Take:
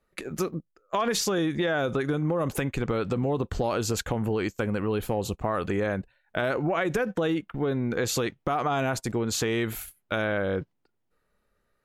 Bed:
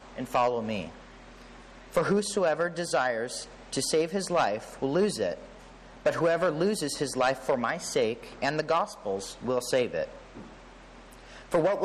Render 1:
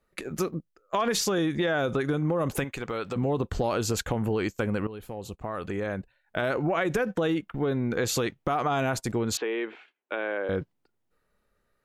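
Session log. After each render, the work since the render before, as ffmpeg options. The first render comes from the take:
-filter_complex "[0:a]asettb=1/sr,asplit=3[a][b][c];[a]atrim=end=2.644[d];[b]atrim=start=2.64:end=3.16,asetpts=PTS-STARTPTS,afade=t=in:d=0.004:c=qsin,afade=t=out:st=0.516:d=0.004:c=qsin,lowshelf=f=370:g=-11.5[e];[c]atrim=start=3.156[f];[d][e]acrossfade=d=0.004:c1=hsin:c2=qsin[g];[g][f]acrossfade=d=0.004:c1=qsin:c2=hsin,asettb=1/sr,asplit=3[h][i][j];[h]atrim=end=9.374[k];[i]atrim=start=9.37:end=10.49,asetpts=PTS-STARTPTS,afade=t=in:d=0.004:c=qsin,afade=t=out:st=1.116:d=0.004:c=qsin,highpass=f=330:w=0.5412,highpass=f=330:w=1.3066,equalizer=f=650:t=q:w=4:g=-5,equalizer=f=1.3k:t=q:w=4:g=-6,equalizer=f=2k:t=q:w=4:g=-3,lowpass=f=2.7k:w=0.5412,lowpass=f=2.7k:w=1.3066[l];[j]atrim=start=10.486[m];[k][l]acrossfade=d=0.004:c1=hsin:c2=qsin[n];[n][m]acrossfade=d=0.004:c1=qsin:c2=hsin,asplit=2[o][p];[o]atrim=end=4.87,asetpts=PTS-STARTPTS,afade=t=out:st=4.866:d=0.004:c=hsin:silence=0.199526[q];[p]atrim=start=4.87,asetpts=PTS-STARTPTS,afade=t=in:d=1.75:silence=0.199526[r];[q][r]concat=n=2:v=0:a=1"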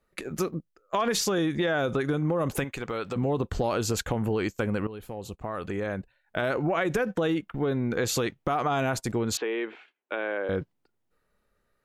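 -af anull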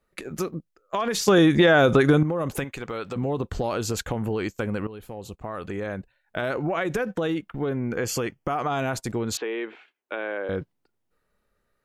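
-filter_complex "[0:a]asettb=1/sr,asplit=3[a][b][c];[a]atrim=end=7.694[d];[b]atrim=start=7.69:end=8.62,asetpts=PTS-STARTPTS,afade=t=in:d=0.004:c=qsin,afade=t=out:st=0.926:d=0.004:c=qsin,asuperstop=centerf=3800:order=4:qfactor=3.8[e];[c]atrim=start=8.616[f];[d][e]acrossfade=d=0.004:c1=hsin:c2=qsin[g];[g][f]acrossfade=d=0.004:c1=qsin:c2=hsin,asplit=3[h][i][j];[h]atrim=end=1.282[k];[i]atrim=start=1.278:end=2.232,asetpts=PTS-STARTPTS,volume=9.5dB[l];[j]atrim=start=2.228[m];[k][l]acrossfade=d=0.004:c1=hsin:c2=hsin[n];[n][m]acrossfade=d=0.004:c1=hsin:c2=hsin"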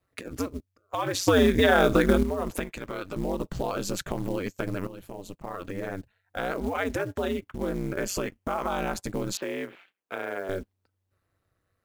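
-af "aeval=exprs='val(0)*sin(2*PI*94*n/s)':c=same,acrusher=bits=6:mode=log:mix=0:aa=0.000001"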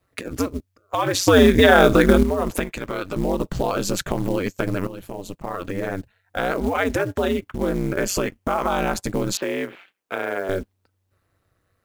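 -af "volume=7dB,alimiter=limit=-1dB:level=0:latency=1"

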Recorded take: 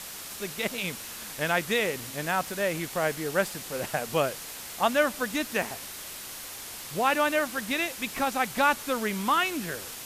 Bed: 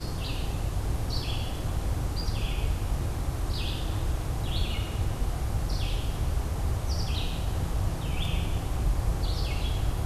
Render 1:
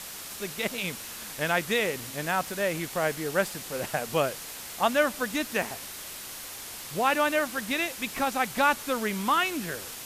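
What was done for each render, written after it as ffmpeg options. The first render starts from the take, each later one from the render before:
-af anull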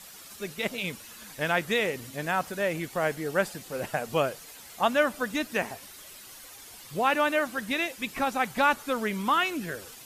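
-af "afftdn=nr=10:nf=-41"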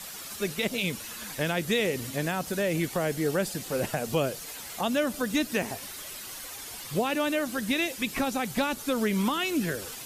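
-filter_complex "[0:a]asplit=2[a][b];[b]alimiter=limit=-22.5dB:level=0:latency=1:release=95,volume=1dB[c];[a][c]amix=inputs=2:normalize=0,acrossover=split=490|3000[d][e][f];[e]acompressor=threshold=-34dB:ratio=4[g];[d][g][f]amix=inputs=3:normalize=0"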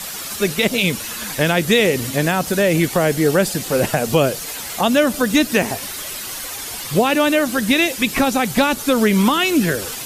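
-af "volume=11.5dB,alimiter=limit=-2dB:level=0:latency=1"

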